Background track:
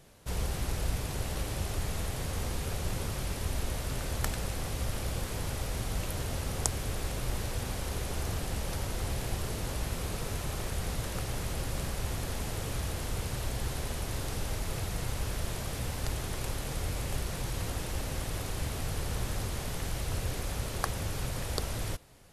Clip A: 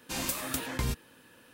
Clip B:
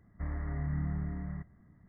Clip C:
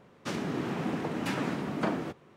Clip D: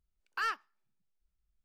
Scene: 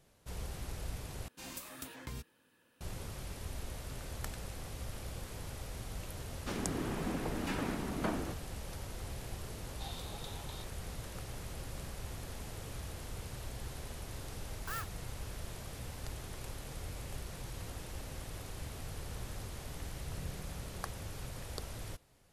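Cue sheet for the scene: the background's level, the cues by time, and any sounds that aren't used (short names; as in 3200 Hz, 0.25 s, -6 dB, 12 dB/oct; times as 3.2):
background track -9.5 dB
1.28 replace with A -13 dB
6.21 add C -5.5 dB
9.7 add A -3 dB + double band-pass 1700 Hz, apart 2.2 oct
14.3 add D -8.5 dB + clock jitter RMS 0.054 ms
19.45 add B -15 dB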